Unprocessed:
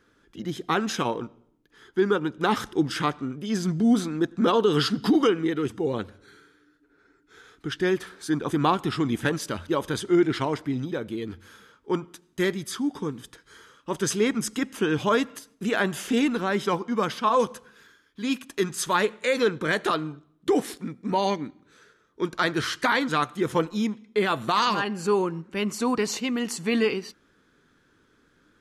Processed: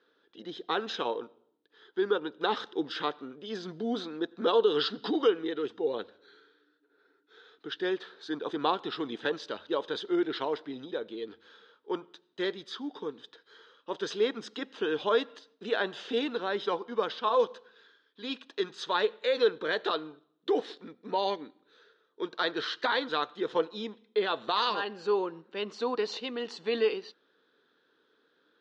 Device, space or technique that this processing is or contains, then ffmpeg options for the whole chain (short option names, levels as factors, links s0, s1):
phone earpiece: -af "highpass=400,equalizer=f=460:t=q:w=4:g=6,equalizer=f=1200:t=q:w=4:g=-3,equalizer=f=2200:t=q:w=4:g=-8,equalizer=f=3800:t=q:w=4:g=7,lowpass=f=4400:w=0.5412,lowpass=f=4400:w=1.3066,volume=0.596"